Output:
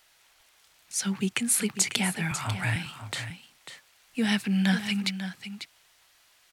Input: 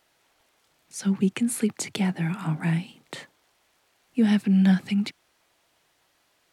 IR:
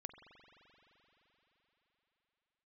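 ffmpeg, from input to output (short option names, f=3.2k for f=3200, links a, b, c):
-filter_complex "[0:a]equalizer=f=270:w=0.35:g=-14.5,asettb=1/sr,asplit=3[a][b][c];[a]atrim=end=2.314[d];[b]atrim=start=2.31:end=2.76,asetpts=PTS-STARTPTS,afade=t=in:d=0.004:c=qsin,afade=t=out:st=0.446:d=0.004:c=qsin,afreqshift=-49[e];[c]atrim=start=2.756[f];[d][e]acrossfade=d=0.004:c1=hsin:c2=qsin[g];[g][f]acrossfade=d=0.004:c1=qsin:c2=hsin,aecho=1:1:545:0.299,volume=7.5dB"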